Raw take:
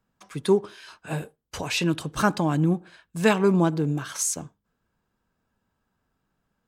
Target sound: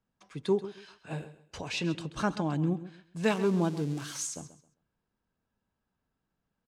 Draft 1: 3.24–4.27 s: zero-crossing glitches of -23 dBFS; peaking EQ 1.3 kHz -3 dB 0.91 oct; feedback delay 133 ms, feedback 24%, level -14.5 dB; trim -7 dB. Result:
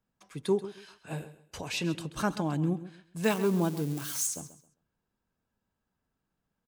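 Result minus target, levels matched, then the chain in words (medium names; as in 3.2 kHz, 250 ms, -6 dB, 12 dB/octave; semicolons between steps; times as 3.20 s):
8 kHz band +4.0 dB
3.24–4.27 s: zero-crossing glitches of -23 dBFS; low-pass 6.4 kHz 12 dB/octave; peaking EQ 1.3 kHz -3 dB 0.91 oct; feedback delay 133 ms, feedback 24%, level -14.5 dB; trim -7 dB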